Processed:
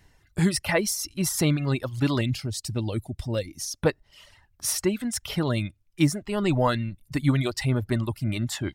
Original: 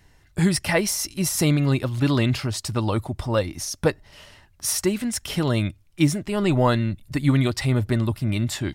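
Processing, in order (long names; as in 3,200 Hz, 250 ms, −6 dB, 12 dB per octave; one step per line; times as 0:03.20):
reverb reduction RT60 0.84 s
0:02.21–0:03.59: parametric band 1,100 Hz −14.5 dB 1.3 octaves
level −2 dB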